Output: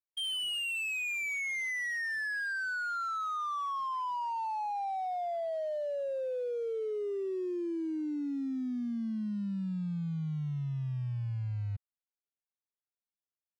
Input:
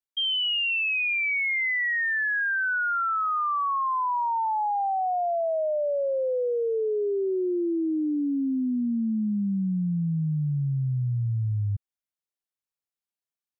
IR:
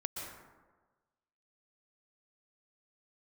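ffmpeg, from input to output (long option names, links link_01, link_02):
-af "acrusher=bits=5:mode=log:mix=0:aa=0.000001,adynamicsmooth=sensitivity=5.5:basefreq=1800,volume=-8.5dB"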